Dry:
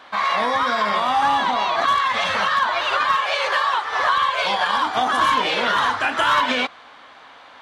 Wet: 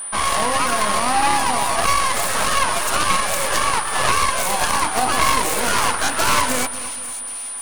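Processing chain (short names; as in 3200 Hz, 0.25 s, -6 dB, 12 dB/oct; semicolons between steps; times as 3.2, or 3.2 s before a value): tracing distortion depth 0.45 ms; split-band echo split 2500 Hz, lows 0.235 s, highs 0.542 s, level -14 dB; whine 9400 Hz -27 dBFS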